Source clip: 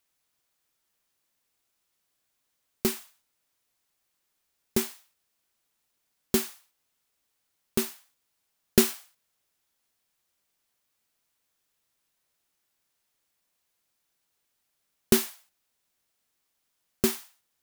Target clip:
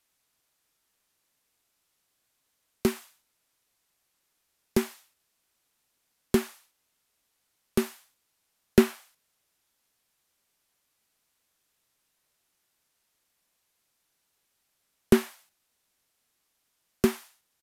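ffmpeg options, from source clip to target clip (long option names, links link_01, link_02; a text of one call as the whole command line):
ffmpeg -i in.wav -filter_complex "[0:a]acrossover=split=240|2500[link_01][link_02][link_03];[link_03]acompressor=threshold=-38dB:ratio=6[link_04];[link_01][link_02][link_04]amix=inputs=3:normalize=0,aresample=32000,aresample=44100,volume=3dB" out.wav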